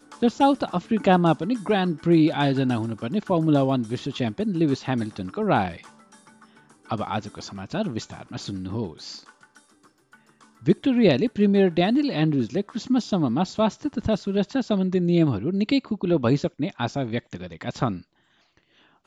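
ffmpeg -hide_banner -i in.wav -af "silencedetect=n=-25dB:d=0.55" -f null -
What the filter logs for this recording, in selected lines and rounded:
silence_start: 5.69
silence_end: 6.91 | silence_duration: 1.22
silence_start: 8.87
silence_end: 10.67 | silence_duration: 1.80
silence_start: 17.94
silence_end: 19.07 | silence_duration: 1.13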